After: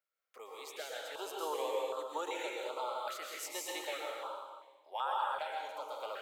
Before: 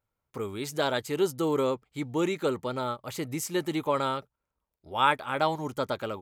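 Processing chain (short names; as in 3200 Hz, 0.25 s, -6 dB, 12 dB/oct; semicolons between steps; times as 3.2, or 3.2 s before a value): HPF 650 Hz 24 dB/oct; bell 10000 Hz -8 dB 2.8 oct; compressor 6:1, threshold -33 dBFS, peak gain reduction 13.5 dB; random-step tremolo 3.5 Hz; plate-style reverb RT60 1.4 s, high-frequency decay 0.95×, pre-delay 0.105 s, DRR -3 dB; stepped notch 2.6 Hz 910–2200 Hz; gain +1 dB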